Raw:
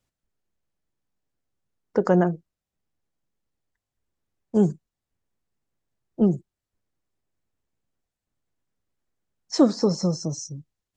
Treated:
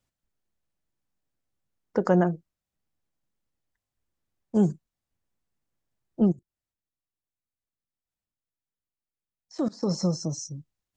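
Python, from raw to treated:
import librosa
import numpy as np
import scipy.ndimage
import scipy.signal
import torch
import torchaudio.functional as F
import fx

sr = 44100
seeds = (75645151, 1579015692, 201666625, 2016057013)

y = fx.peak_eq(x, sr, hz=420.0, db=-3.5, octaves=0.3)
y = fx.level_steps(y, sr, step_db=23, at=(6.31, 9.88), fade=0.02)
y = y * 10.0 ** (-1.5 / 20.0)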